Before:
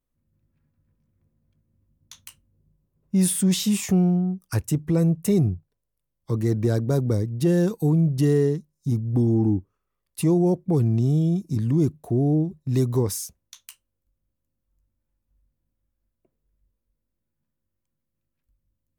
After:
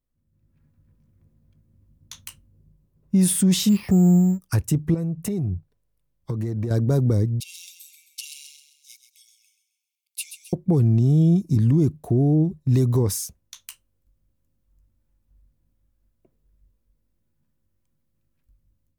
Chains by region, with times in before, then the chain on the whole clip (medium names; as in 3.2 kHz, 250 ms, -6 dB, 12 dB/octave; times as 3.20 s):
3.69–4.40 s: companding laws mixed up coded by mu + tape spacing loss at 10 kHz 29 dB + careless resampling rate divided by 6×, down filtered, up hold
4.94–6.71 s: tone controls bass 0 dB, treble -3 dB + compression 8:1, threshold -28 dBFS
7.40–10.53 s: brick-wall FIR high-pass 2.1 kHz + feedback delay 132 ms, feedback 45%, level -9.5 dB
whole clip: bass shelf 240 Hz +5 dB; level rider gain up to 8.5 dB; peak limiter -7 dBFS; trim -4 dB